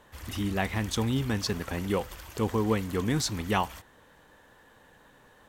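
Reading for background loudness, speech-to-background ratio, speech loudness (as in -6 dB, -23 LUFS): -44.5 LUFS, 14.5 dB, -30.0 LUFS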